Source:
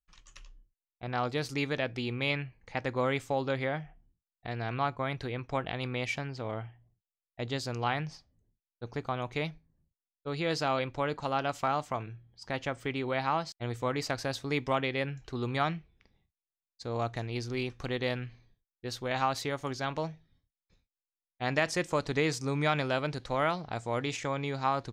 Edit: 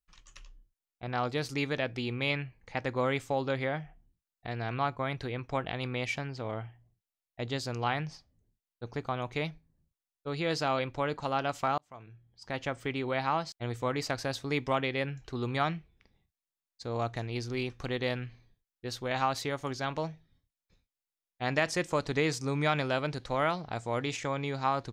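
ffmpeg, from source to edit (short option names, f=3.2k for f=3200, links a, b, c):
-filter_complex "[0:a]asplit=2[a][b];[a]atrim=end=11.78,asetpts=PTS-STARTPTS,afade=t=out:st=11.776:d=0.004:c=hsin[c];[b]atrim=start=11.78,asetpts=PTS-STARTPTS,afade=t=in:d=0.88[d];[c][d]concat=n=2:v=0:a=1"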